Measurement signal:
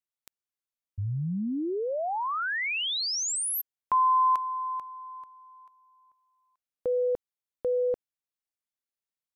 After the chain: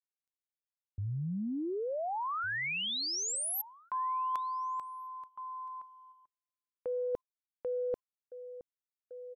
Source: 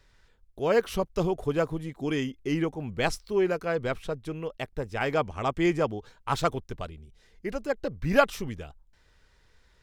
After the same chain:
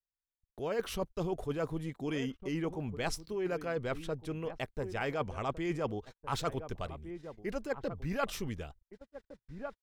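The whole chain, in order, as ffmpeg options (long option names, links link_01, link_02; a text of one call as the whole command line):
ffmpeg -i in.wav -filter_complex "[0:a]asplit=2[link_01][link_02];[link_02]adelay=1458,volume=-17dB,highshelf=frequency=4000:gain=-32.8[link_03];[link_01][link_03]amix=inputs=2:normalize=0,areverse,acompressor=threshold=-32dB:ratio=8:attack=31:release=76:knee=6:detection=peak,areverse,agate=range=-41dB:threshold=-51dB:ratio=16:release=92:detection=peak,volume=-2dB" out.wav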